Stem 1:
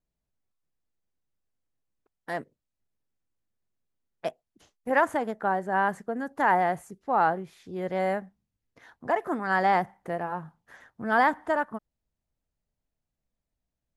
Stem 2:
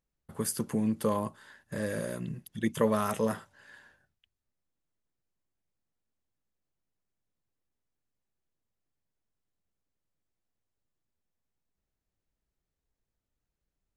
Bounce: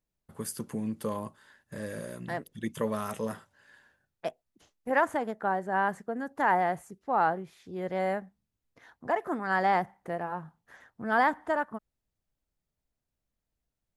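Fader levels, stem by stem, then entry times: −2.5, −4.5 decibels; 0.00, 0.00 seconds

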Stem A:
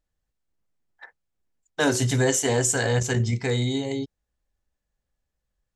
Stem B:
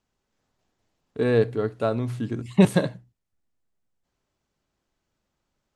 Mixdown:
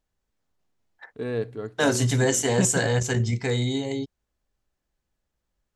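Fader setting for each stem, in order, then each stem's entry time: −0.5, −8.0 decibels; 0.00, 0.00 seconds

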